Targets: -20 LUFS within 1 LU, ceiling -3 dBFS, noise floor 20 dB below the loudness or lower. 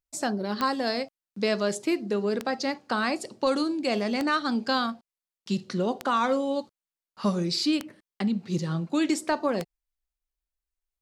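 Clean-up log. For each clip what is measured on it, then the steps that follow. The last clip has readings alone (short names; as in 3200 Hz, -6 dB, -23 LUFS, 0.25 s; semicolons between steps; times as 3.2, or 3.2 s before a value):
clicks 6; loudness -27.5 LUFS; peak -12.0 dBFS; loudness target -20.0 LUFS
-> de-click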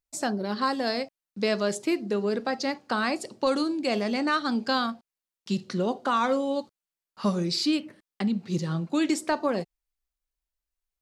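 clicks 0; loudness -27.5 LUFS; peak -12.5 dBFS; loudness target -20.0 LUFS
-> gain +7.5 dB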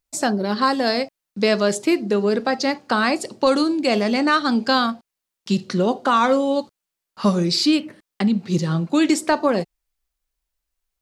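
loudness -20.0 LUFS; peak -5.0 dBFS; noise floor -84 dBFS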